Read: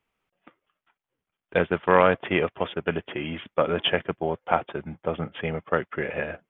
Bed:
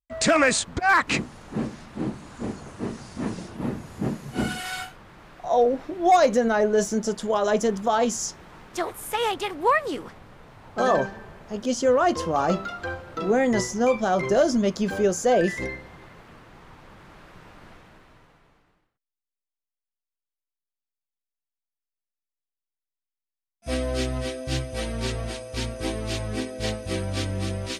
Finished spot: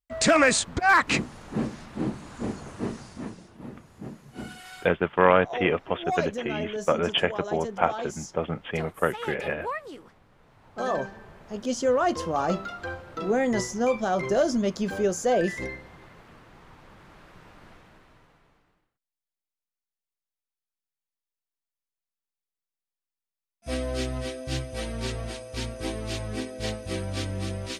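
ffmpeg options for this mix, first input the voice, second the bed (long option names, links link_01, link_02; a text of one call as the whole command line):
ffmpeg -i stem1.wav -i stem2.wav -filter_complex "[0:a]adelay=3300,volume=-0.5dB[link_01];[1:a]volume=9dB,afade=type=out:start_time=2.85:duration=0.53:silence=0.251189,afade=type=in:start_time=10.3:duration=1.3:silence=0.354813[link_02];[link_01][link_02]amix=inputs=2:normalize=0" out.wav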